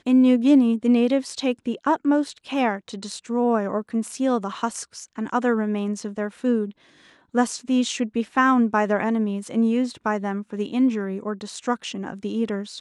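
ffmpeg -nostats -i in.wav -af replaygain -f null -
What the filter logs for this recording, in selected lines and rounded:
track_gain = +2.4 dB
track_peak = 0.323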